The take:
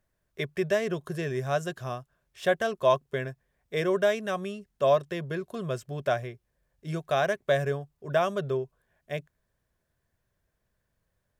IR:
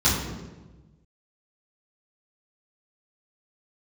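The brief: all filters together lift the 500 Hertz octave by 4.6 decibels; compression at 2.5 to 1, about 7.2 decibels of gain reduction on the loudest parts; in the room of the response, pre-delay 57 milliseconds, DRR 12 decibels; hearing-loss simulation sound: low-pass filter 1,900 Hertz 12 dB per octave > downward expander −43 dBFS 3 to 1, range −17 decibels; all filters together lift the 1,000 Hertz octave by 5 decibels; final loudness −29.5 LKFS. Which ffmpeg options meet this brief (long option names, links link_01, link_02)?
-filter_complex "[0:a]equalizer=frequency=500:width_type=o:gain=4,equalizer=frequency=1000:width_type=o:gain=5.5,acompressor=threshold=-24dB:ratio=2.5,asplit=2[link_01][link_02];[1:a]atrim=start_sample=2205,adelay=57[link_03];[link_02][link_03]afir=irnorm=-1:irlink=0,volume=-28.5dB[link_04];[link_01][link_04]amix=inputs=2:normalize=0,lowpass=1900,agate=range=-17dB:threshold=-43dB:ratio=3"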